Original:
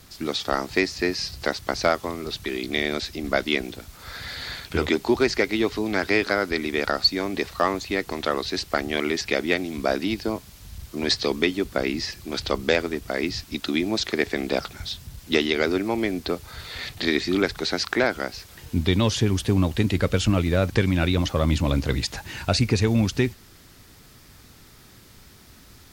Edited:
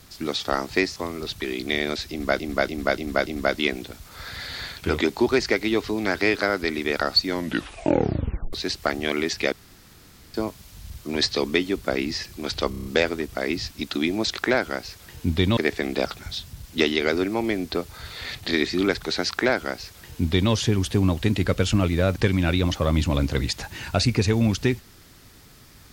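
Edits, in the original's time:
0.96–2 cut
3.15–3.44 loop, 5 plays
7.14 tape stop 1.27 s
9.4–10.22 room tone
12.58 stutter 0.03 s, 6 plays
17.87–19.06 copy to 14.11

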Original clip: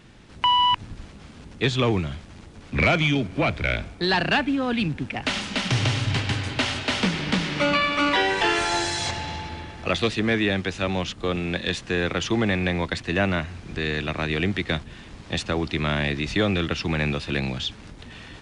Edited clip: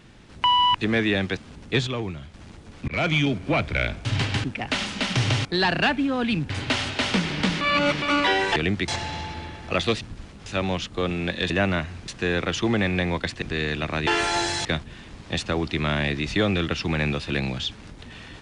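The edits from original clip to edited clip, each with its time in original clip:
0.81–1.26 swap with 10.16–10.72
1.76–2.23 gain -7.5 dB
2.77–3.08 fade in equal-power
3.94–4.99 swap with 6–6.39
7.5–7.91 reverse
8.45–9.03 swap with 14.33–14.65
13.1–13.68 move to 11.76

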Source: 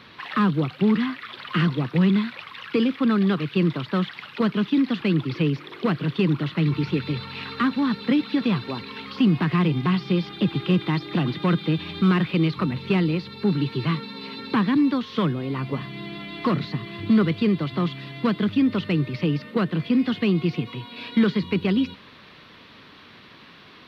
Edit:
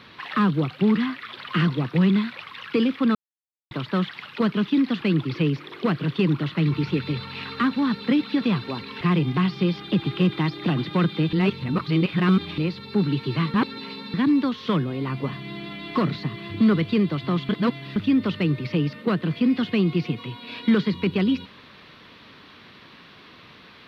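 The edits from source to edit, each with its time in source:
3.15–3.71 mute
9.01–9.5 cut
11.82–13.07 reverse
14.03–14.63 reverse
17.98–18.45 reverse

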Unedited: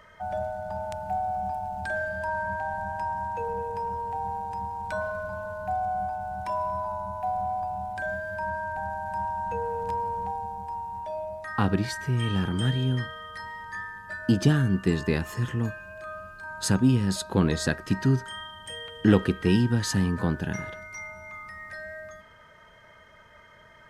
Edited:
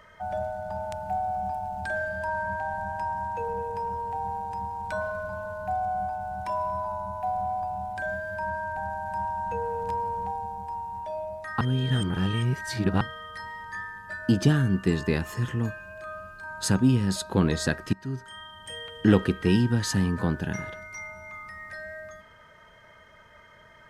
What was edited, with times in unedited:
11.61–13.01 reverse
17.93–18.77 fade in, from -19 dB

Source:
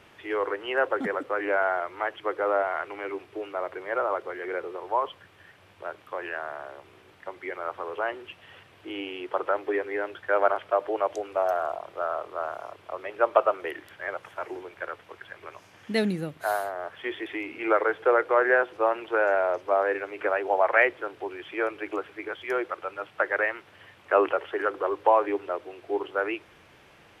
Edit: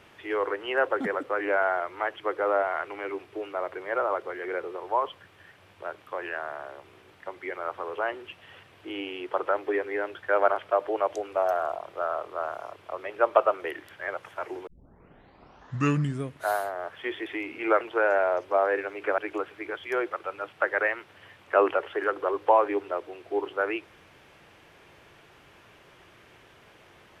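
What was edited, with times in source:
14.67 tape start 1.84 s
17.81–18.98 cut
20.35–21.76 cut

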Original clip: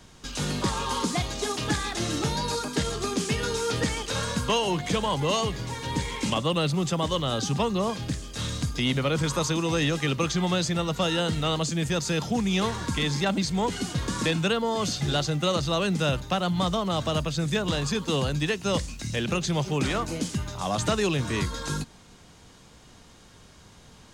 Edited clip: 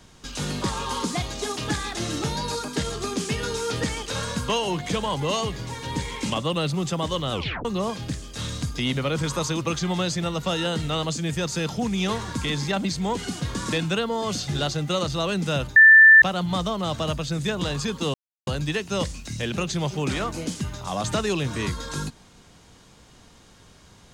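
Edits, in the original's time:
7.32 tape stop 0.33 s
9.61–10.14 cut
16.29 add tone 1770 Hz -7.5 dBFS 0.46 s
18.21 insert silence 0.33 s

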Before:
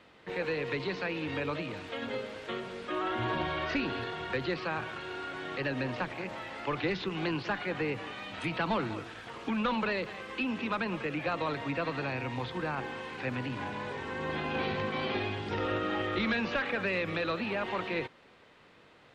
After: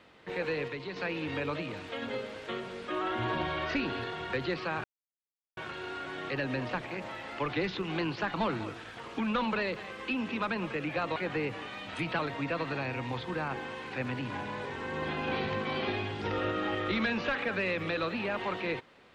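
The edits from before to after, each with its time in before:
0.68–0.96 gain -5.5 dB
4.84 insert silence 0.73 s
7.61–8.64 move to 11.46

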